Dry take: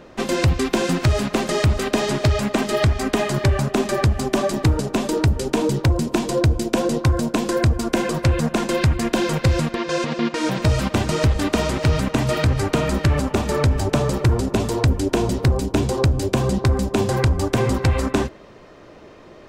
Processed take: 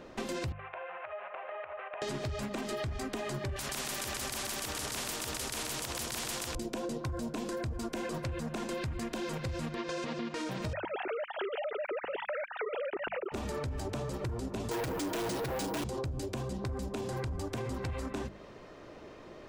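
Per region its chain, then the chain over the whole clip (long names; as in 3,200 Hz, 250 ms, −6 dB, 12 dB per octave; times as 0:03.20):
0:00.52–0:02.02: elliptic band-pass filter 580–2,700 Hz + downward compressor, threshold −30 dBFS + high-frequency loss of the air 460 metres
0:03.56–0:06.55: repeating echo 128 ms, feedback 44%, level −4 dB + every bin compressed towards the loudest bin 4 to 1
0:10.73–0:13.32: three sine waves on the formant tracks + notch filter 1,100 Hz, Q 7
0:14.71–0:15.84: comb filter 6.2 ms, depth 57% + mid-hump overdrive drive 30 dB, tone 7,000 Hz, clips at −5.5 dBFS + bad sample-rate conversion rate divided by 3×, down none, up hold
whole clip: mains-hum notches 50/100/150/200 Hz; brickwall limiter −16.5 dBFS; downward compressor, threshold −28 dBFS; level −5.5 dB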